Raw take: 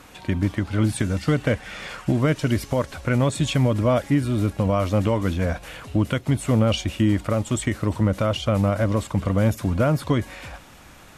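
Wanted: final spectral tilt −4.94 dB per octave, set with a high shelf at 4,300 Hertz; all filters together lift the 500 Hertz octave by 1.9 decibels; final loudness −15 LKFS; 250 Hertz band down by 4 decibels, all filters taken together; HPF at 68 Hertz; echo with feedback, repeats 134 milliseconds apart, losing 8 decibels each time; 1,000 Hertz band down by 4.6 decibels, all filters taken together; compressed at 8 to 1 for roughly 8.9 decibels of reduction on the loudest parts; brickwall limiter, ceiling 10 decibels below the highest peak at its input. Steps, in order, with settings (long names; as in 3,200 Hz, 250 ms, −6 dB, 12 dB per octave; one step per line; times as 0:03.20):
high-pass filter 68 Hz
parametric band 250 Hz −6.5 dB
parametric band 500 Hz +6 dB
parametric band 1,000 Hz −8.5 dB
high-shelf EQ 4,300 Hz +5 dB
downward compressor 8 to 1, threshold −25 dBFS
brickwall limiter −22 dBFS
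repeating echo 134 ms, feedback 40%, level −8 dB
level +17.5 dB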